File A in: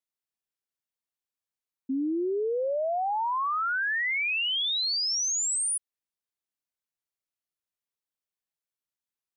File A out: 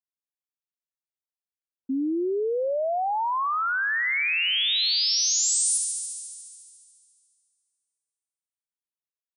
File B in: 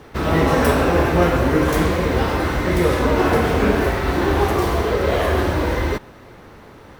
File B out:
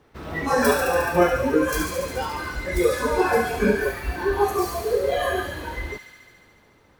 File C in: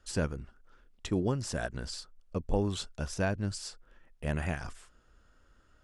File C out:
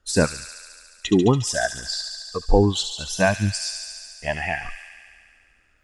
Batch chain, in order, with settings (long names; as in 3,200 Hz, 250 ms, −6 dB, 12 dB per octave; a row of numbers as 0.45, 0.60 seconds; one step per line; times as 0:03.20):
noise reduction from a noise print of the clip's start 16 dB
delay with a high-pass on its return 71 ms, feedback 80%, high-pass 2,600 Hz, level −5.5 dB
loudness normalisation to −23 LKFS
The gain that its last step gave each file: +2.5, +1.0, +14.0 decibels